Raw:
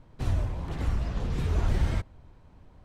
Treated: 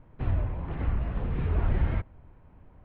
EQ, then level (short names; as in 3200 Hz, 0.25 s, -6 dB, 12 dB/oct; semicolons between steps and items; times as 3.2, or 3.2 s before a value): LPF 2700 Hz 24 dB/oct; air absorption 60 m; 0.0 dB